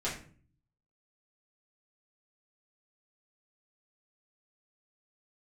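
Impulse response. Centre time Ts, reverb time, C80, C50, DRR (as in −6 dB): 31 ms, 0.45 s, 11.0 dB, 6.5 dB, −8.5 dB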